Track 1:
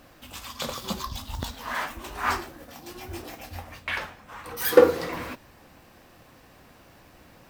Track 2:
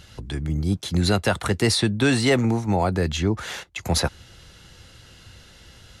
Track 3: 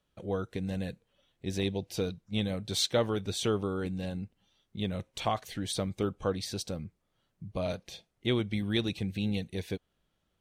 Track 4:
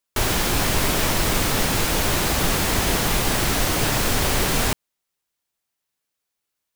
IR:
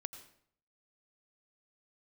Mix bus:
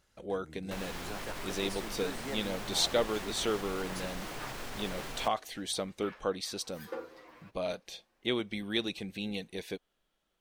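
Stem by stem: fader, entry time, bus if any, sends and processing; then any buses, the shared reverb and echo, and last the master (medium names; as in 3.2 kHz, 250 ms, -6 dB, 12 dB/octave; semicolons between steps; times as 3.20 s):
-17.5 dB, 2.15 s, no send, treble shelf 7.5 kHz -9.5 dB; endless flanger 8.6 ms -0.87 Hz
-19.0 dB, 0.00 s, no send, peaking EQ 3.3 kHz -12 dB 0.97 oct
+0.5 dB, 0.00 s, no send, peaking EQ 94 Hz -5 dB 0.77 oct
-16.0 dB, 0.55 s, no send, treble shelf 5.2 kHz -10 dB; peak limiter -13 dBFS, peak gain reduction 4.5 dB; peaking EQ 130 Hz +7 dB 0.44 oct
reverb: none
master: peaking EQ 98 Hz -12.5 dB 2.1 oct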